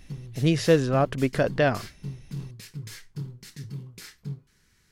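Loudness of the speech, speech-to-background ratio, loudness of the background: -24.0 LUFS, 16.0 dB, -40.0 LUFS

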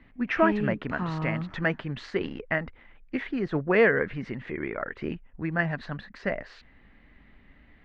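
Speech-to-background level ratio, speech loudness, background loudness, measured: 3.5 dB, -29.0 LUFS, -32.5 LUFS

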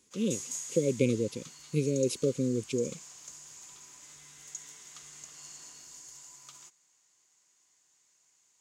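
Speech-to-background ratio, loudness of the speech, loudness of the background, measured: 12.5 dB, -31.0 LUFS, -43.5 LUFS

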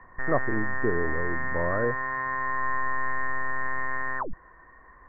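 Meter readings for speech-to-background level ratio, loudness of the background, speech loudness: -0.5 dB, -30.0 LUFS, -30.5 LUFS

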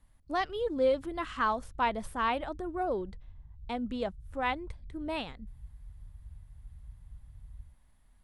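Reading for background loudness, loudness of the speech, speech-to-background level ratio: -53.0 LUFS, -33.0 LUFS, 20.0 dB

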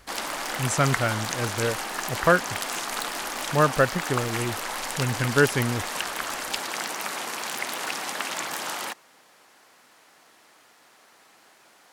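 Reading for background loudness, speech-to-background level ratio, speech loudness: -29.5 LUFS, 4.0 dB, -25.5 LUFS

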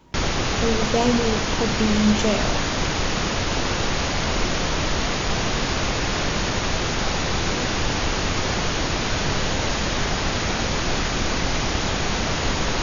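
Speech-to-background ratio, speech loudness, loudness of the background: -0.5 dB, -23.5 LUFS, -23.0 LUFS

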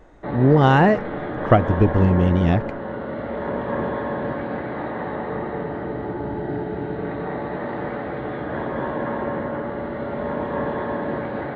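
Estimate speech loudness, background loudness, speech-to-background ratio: -18.0 LUFS, -27.5 LUFS, 9.5 dB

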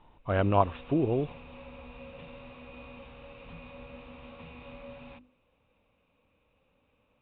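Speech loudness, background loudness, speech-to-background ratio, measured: -28.5 LUFS, -48.0 LUFS, 19.5 dB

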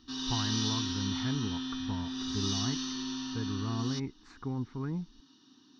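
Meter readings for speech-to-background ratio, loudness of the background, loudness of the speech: -3.5 dB, -34.5 LUFS, -38.0 LUFS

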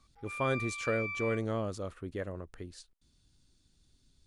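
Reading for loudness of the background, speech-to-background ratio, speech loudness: -38.0 LUFS, 2.5 dB, -35.5 LUFS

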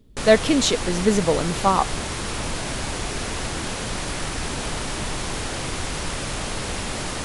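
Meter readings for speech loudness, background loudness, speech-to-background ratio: -20.5 LUFS, -28.0 LUFS, 7.5 dB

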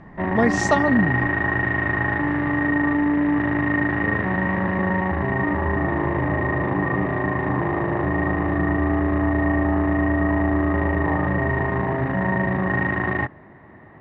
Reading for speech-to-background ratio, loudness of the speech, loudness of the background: -1.0 dB, -22.5 LUFS, -21.5 LUFS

